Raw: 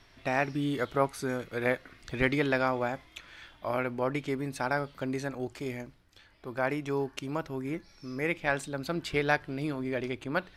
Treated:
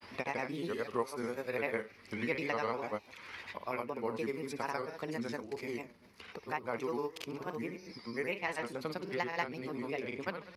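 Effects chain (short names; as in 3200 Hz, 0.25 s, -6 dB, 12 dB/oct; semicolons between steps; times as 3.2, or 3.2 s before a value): bell 160 Hz -4 dB 0.68 oct; flutter echo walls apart 10.4 m, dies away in 0.36 s; grains, pitch spread up and down by 3 st; ripple EQ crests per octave 0.86, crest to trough 7 dB; in parallel at +3 dB: compressor, threshold -46 dBFS, peak gain reduction 23.5 dB; on the sum: HPF 110 Hz 12 dB/oct; three-band squash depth 40%; gain -7 dB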